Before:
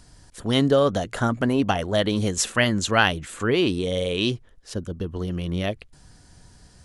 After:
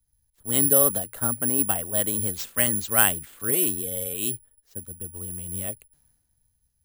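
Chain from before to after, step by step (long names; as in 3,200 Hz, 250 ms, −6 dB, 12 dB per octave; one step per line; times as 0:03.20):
high-shelf EQ 5,500 Hz −6.5 dB
bad sample-rate conversion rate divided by 4×, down none, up zero stuff
multiband upward and downward expander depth 70%
level −8.5 dB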